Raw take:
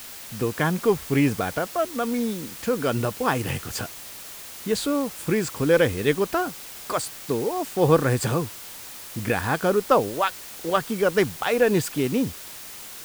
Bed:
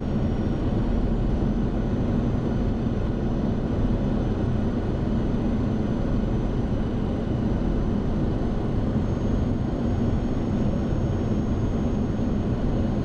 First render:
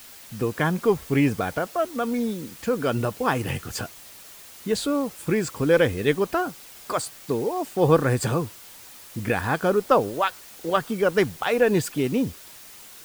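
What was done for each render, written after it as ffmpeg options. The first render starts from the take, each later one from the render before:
ffmpeg -i in.wav -af "afftdn=noise_reduction=6:noise_floor=-40" out.wav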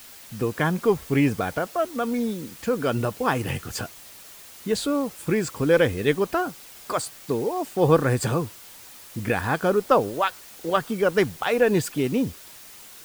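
ffmpeg -i in.wav -af anull out.wav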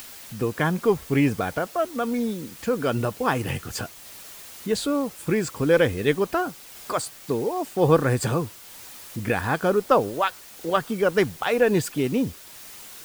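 ffmpeg -i in.wav -af "acompressor=mode=upward:threshold=-36dB:ratio=2.5" out.wav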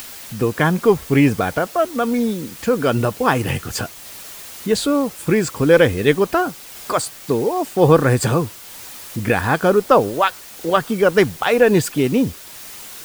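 ffmpeg -i in.wav -af "volume=6.5dB,alimiter=limit=-1dB:level=0:latency=1" out.wav

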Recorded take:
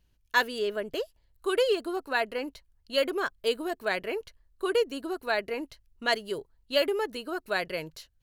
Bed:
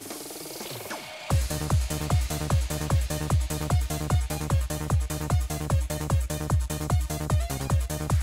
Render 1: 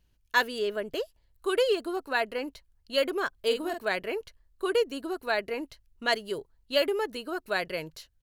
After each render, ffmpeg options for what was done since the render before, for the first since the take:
ffmpeg -i in.wav -filter_complex "[0:a]asplit=3[link_01][link_02][link_03];[link_01]afade=type=out:start_time=3.33:duration=0.02[link_04];[link_02]asplit=2[link_05][link_06];[link_06]adelay=46,volume=-6.5dB[link_07];[link_05][link_07]amix=inputs=2:normalize=0,afade=type=in:start_time=3.33:duration=0.02,afade=type=out:start_time=3.8:duration=0.02[link_08];[link_03]afade=type=in:start_time=3.8:duration=0.02[link_09];[link_04][link_08][link_09]amix=inputs=3:normalize=0" out.wav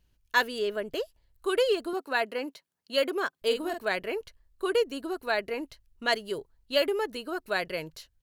ffmpeg -i in.wav -filter_complex "[0:a]asettb=1/sr,asplit=3[link_01][link_02][link_03];[link_01]atrim=end=1.934[link_04];[link_02]atrim=start=1.93:end=3.42,asetpts=PTS-STARTPTS,afade=type=in:duration=0.004:curve=qsin,afade=type=out:start_time=1.486:duration=0.004:curve=qsin,highpass=frequency=170:width=0.5412,highpass=frequency=170:width=1.3066[link_05];[link_03]atrim=start=3.416[link_06];[link_04][link_05]acrossfade=duration=0.004:curve1=hsin:curve2=qsin[link_07];[link_07][link_06]acrossfade=duration=0.004:curve1=qsin:curve2=hsin" out.wav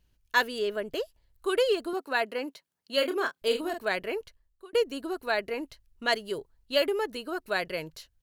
ffmpeg -i in.wav -filter_complex "[0:a]asettb=1/sr,asplit=3[link_01][link_02][link_03];[link_01]atrim=end=2.944[link_04];[link_02]atrim=start=2.94:end=3.61,asetpts=PTS-STARTPTS,afade=type=in:duration=0.004:curve=qsin,afade=type=out:start_time=0.666:duration=0.004:curve=qsin,asplit=2[link_05][link_06];[link_06]adelay=30,volume=-8dB[link_07];[link_05][link_07]amix=inputs=2:normalize=0,atrim=end_sample=29547[link_08];[link_03]atrim=start=3.606[link_09];[link_04][link_08]acrossfade=duration=0.004:curve1=hsin:curve2=qsin[link_10];[link_10][link_09]acrossfade=duration=0.004:curve1=qsin:curve2=hsin,asplit=2[link_11][link_12];[link_11]atrim=end=4.73,asetpts=PTS-STARTPTS,afade=type=out:start_time=4.16:duration=0.57[link_13];[link_12]atrim=start=4.73,asetpts=PTS-STARTPTS,afade=type=in:duration=0.004:curve=hsin[link_14];[link_13][link_14]concat=n=2:v=0:a=1" out.wav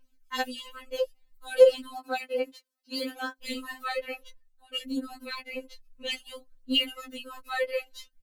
ffmpeg -i in.wav -af "aphaser=in_gain=1:out_gain=1:delay=2.4:decay=0.61:speed=0.6:type=triangular,afftfilt=real='re*3.46*eq(mod(b,12),0)':imag='im*3.46*eq(mod(b,12),0)':win_size=2048:overlap=0.75" out.wav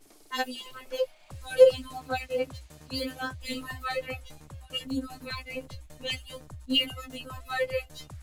ffmpeg -i in.wav -i bed.wav -filter_complex "[1:a]volume=-20.5dB[link_01];[0:a][link_01]amix=inputs=2:normalize=0" out.wav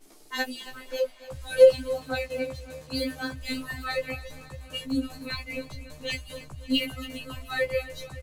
ffmpeg -i in.wav -filter_complex "[0:a]asplit=2[link_01][link_02];[link_02]adelay=15,volume=-3dB[link_03];[link_01][link_03]amix=inputs=2:normalize=0,aecho=1:1:280|560|840|1120|1400|1680:0.158|0.0935|0.0552|0.0326|0.0192|0.0113" out.wav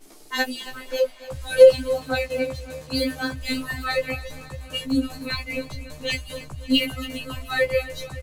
ffmpeg -i in.wav -af "volume=5.5dB,alimiter=limit=-2dB:level=0:latency=1" out.wav

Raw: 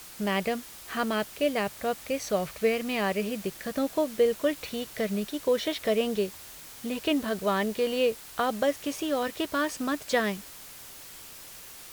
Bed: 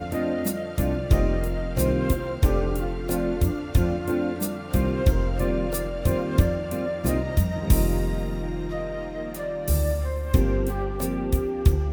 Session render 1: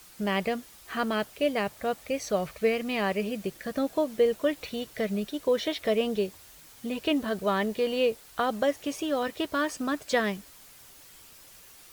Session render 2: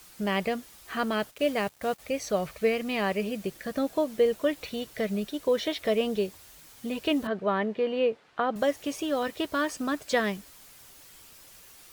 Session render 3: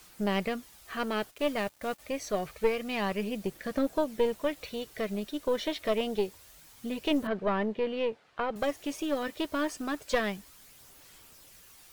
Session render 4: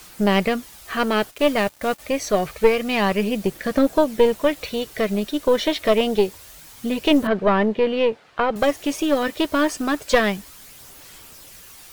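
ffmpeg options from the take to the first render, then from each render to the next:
ffmpeg -i in.wav -af "afftdn=noise_reduction=7:noise_floor=-46" out.wav
ffmpeg -i in.wav -filter_complex "[0:a]asplit=3[link_01][link_02][link_03];[link_01]afade=type=out:start_time=1.3:duration=0.02[link_04];[link_02]acrusher=bits=6:mix=0:aa=0.5,afade=type=in:start_time=1.3:duration=0.02,afade=type=out:start_time=1.98:duration=0.02[link_05];[link_03]afade=type=in:start_time=1.98:duration=0.02[link_06];[link_04][link_05][link_06]amix=inputs=3:normalize=0,asettb=1/sr,asplit=3[link_07][link_08][link_09];[link_07]atrim=end=7.274[link_10];[link_08]atrim=start=7.27:end=8.56,asetpts=PTS-STARTPTS,afade=type=in:duration=0.004:curve=qsin,afade=type=out:start_time=1.286:duration=0.004:curve=qsin,highpass=140,lowpass=2400[link_11];[link_09]atrim=start=8.556[link_12];[link_10][link_11]acrossfade=duration=0.004:curve1=hsin:curve2=qsin[link_13];[link_13][link_12]acrossfade=duration=0.004:curve1=qsin:curve2=hsin" out.wav
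ffmpeg -i in.wav -af "aphaser=in_gain=1:out_gain=1:delay=3.4:decay=0.26:speed=0.27:type=sinusoidal,aeval=exprs='(tanh(5.62*val(0)+0.65)-tanh(0.65))/5.62':channel_layout=same" out.wav
ffmpeg -i in.wav -af "volume=11dB" out.wav

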